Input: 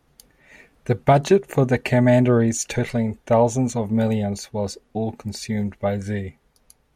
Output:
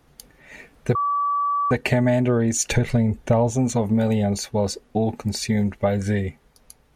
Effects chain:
0:02.71–0:03.51: low-shelf EQ 200 Hz +9.5 dB
downward compressor 6 to 1, threshold −21 dBFS, peak gain reduction 11 dB
0:00.95–0:01.71: beep over 1,150 Hz −24 dBFS
level +5 dB

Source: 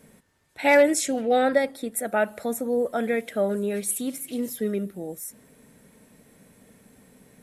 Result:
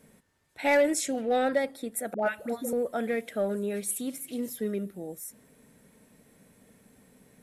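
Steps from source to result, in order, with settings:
0:02.14–0:02.73: all-pass dispersion highs, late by 121 ms, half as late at 840 Hz
in parallel at −7 dB: hard clipping −19 dBFS, distortion −10 dB
on the sum: level −7.5 dB

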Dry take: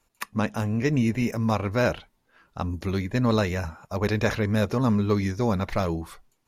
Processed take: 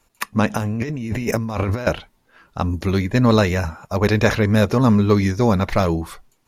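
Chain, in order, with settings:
0:00.50–0:01.87: compressor whose output falls as the input rises −31 dBFS, ratio −1
level +7.5 dB

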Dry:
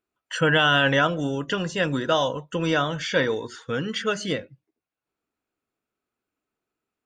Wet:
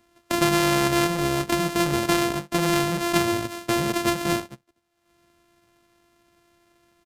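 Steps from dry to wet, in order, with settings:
samples sorted by size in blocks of 128 samples
in parallel at −10.5 dB: wave folding −25 dBFS
on the sum: downsampling to 32,000 Hz
multiband upward and downward compressor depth 70%

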